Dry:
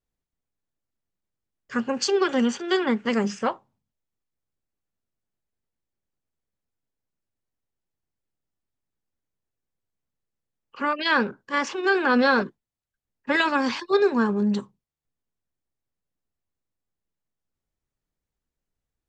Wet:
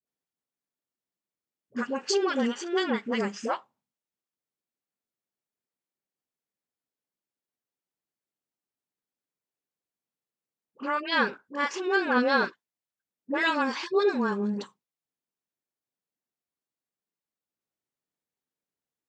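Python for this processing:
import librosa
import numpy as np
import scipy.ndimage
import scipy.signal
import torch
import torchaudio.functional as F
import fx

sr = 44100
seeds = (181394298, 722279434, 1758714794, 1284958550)

y = scipy.signal.sosfilt(scipy.signal.butter(2, 210.0, 'highpass', fs=sr, output='sos'), x)
y = fx.dispersion(y, sr, late='highs', ms=69.0, hz=670.0)
y = y * librosa.db_to_amplitude(-3.5)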